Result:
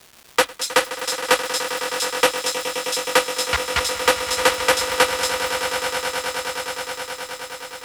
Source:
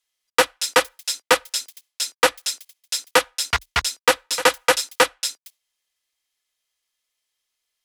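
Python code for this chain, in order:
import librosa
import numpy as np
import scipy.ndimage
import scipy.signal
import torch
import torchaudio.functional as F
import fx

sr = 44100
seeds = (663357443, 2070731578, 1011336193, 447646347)

y = fx.dmg_crackle(x, sr, seeds[0], per_s=450.0, level_db=-32.0)
y = fx.echo_swell(y, sr, ms=105, loudest=8, wet_db=-13)
y = F.gain(torch.from_numpy(y), -1.0).numpy()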